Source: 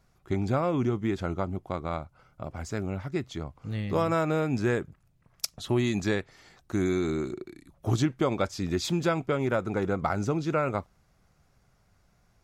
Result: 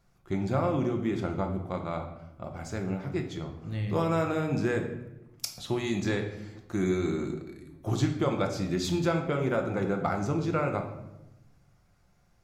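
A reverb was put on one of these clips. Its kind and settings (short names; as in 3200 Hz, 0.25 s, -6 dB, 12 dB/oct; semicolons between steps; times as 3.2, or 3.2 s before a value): shoebox room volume 340 m³, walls mixed, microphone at 0.83 m; gain -3 dB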